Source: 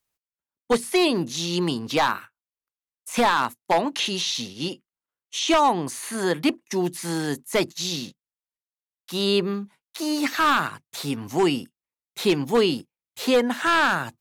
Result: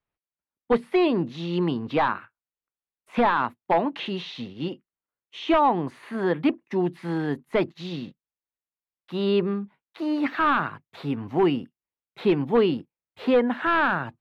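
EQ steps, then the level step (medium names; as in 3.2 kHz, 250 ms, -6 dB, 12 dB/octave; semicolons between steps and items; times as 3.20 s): distance through air 480 m; +1.0 dB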